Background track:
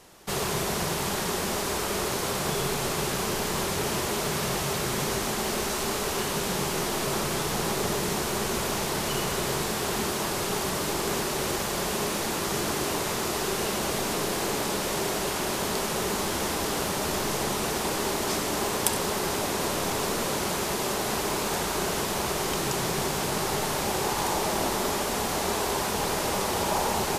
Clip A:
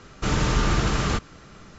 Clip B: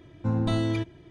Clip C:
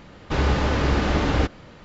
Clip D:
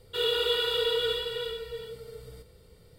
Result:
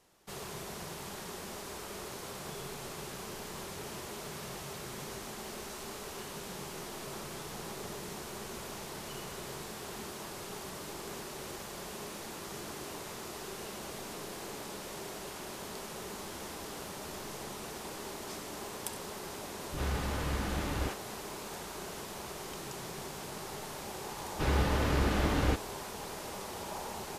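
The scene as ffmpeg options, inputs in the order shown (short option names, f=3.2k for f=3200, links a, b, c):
-filter_complex "[3:a]asplit=2[a][b];[0:a]volume=-14.5dB[c];[a]acrossover=split=400[d][e];[e]adelay=50[f];[d][f]amix=inputs=2:normalize=0,atrim=end=1.84,asetpts=PTS-STARTPTS,volume=-13dB,afade=t=in:d=0.004:c=hsin,afade=t=out:st=1.836:d=0.004:c=hsin,adelay=19420[g];[b]atrim=end=1.84,asetpts=PTS-STARTPTS,volume=-8dB,afade=t=in:d=0.004:c=hsin,afade=t=out:st=1.836:d=0.004:c=hsin,adelay=24090[h];[c][g][h]amix=inputs=3:normalize=0"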